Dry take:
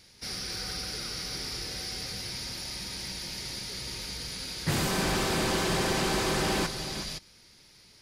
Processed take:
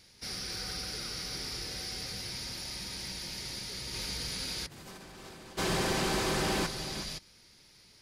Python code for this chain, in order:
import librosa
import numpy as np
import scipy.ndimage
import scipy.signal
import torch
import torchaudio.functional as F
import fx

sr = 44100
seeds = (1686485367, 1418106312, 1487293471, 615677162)

y = fx.over_compress(x, sr, threshold_db=-35.0, ratio=-0.5, at=(3.93, 5.57), fade=0.02)
y = F.gain(torch.from_numpy(y), -2.5).numpy()